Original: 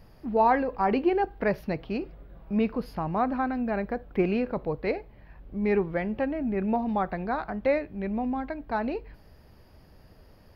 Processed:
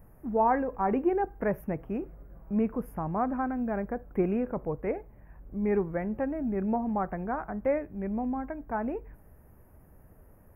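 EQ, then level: Butterworth band-stop 4.1 kHz, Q 0.5; bass shelf 460 Hz +4 dB; treble shelf 2.3 kHz +10.5 dB; -5.0 dB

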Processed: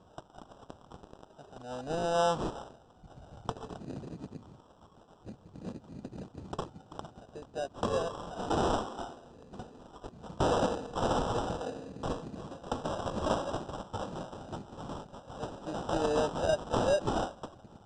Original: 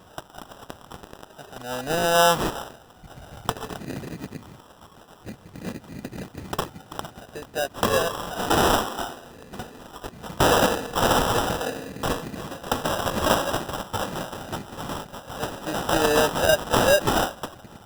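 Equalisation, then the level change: steep low-pass 8.7 kHz 48 dB/octave; peaking EQ 2 kHz -14.5 dB 0.76 oct; treble shelf 4.2 kHz -10 dB; -7.5 dB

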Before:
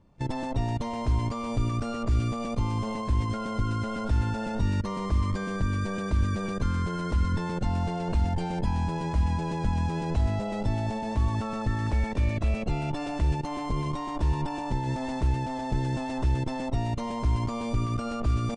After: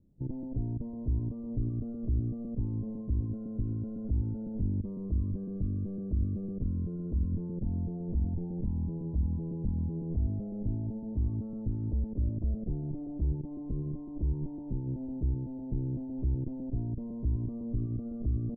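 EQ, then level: four-pole ladder low-pass 450 Hz, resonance 20%; 0.0 dB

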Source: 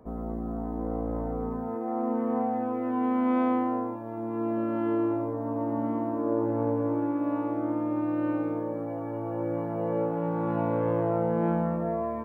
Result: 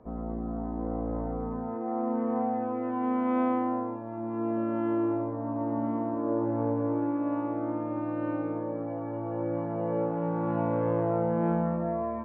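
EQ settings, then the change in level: distance through air 200 m; hum notches 50/100/150/200/250/300/350/400/450 Hz; 0.0 dB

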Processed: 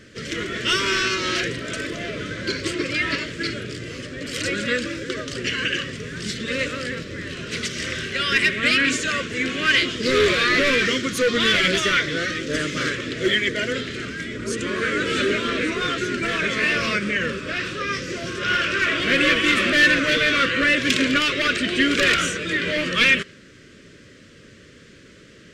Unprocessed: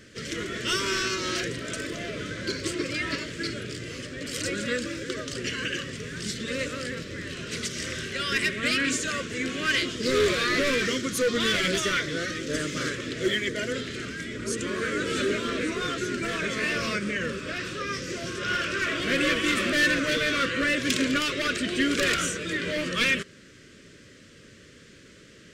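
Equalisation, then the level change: dynamic bell 2.6 kHz, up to +5 dB, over -38 dBFS, Q 0.75; treble shelf 6.2 kHz -7 dB; +4.0 dB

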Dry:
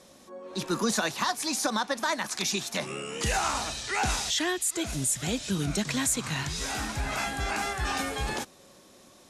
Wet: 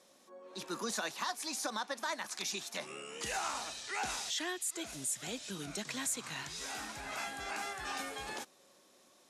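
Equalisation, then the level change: bass shelf 60 Hz -7.5 dB; peaking EQ 84 Hz -8.5 dB 2.6 oct; bass shelf 140 Hz -5.5 dB; -8.5 dB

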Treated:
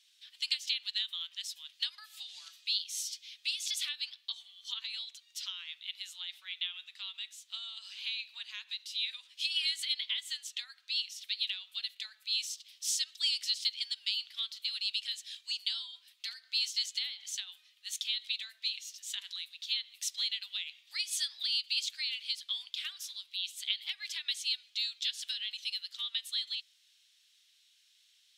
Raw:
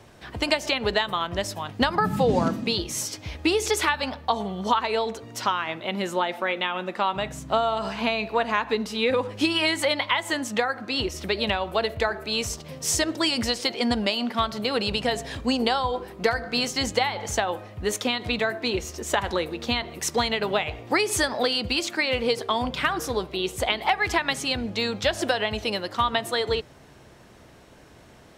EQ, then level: ladder high-pass 3 kHz, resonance 50%; 0.0 dB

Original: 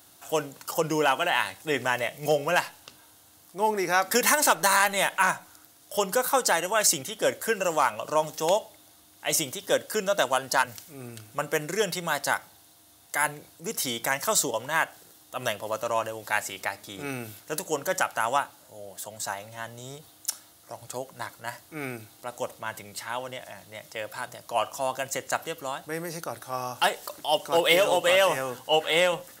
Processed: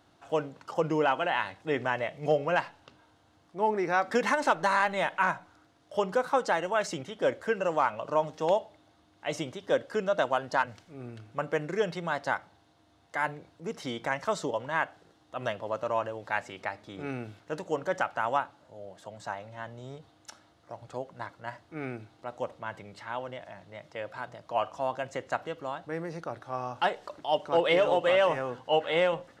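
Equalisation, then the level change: tape spacing loss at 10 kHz 28 dB; 0.0 dB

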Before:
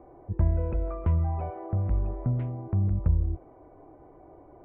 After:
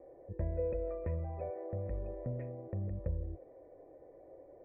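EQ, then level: cascade formant filter e; +7.0 dB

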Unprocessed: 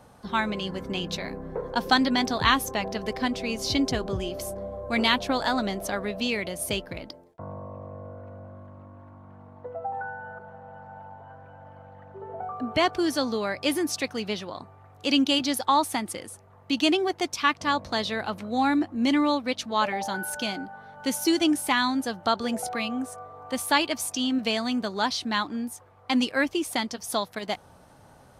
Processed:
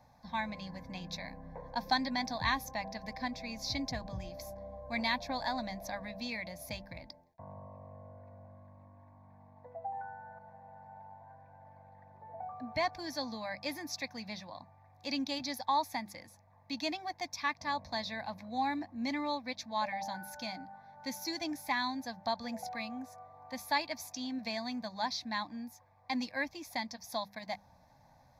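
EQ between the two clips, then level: hum notches 50/100/150/200 Hz; static phaser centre 2 kHz, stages 8; -7.0 dB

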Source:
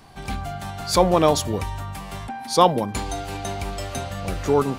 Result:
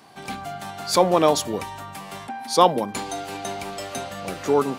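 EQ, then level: high-pass 200 Hz 12 dB/octave; 0.0 dB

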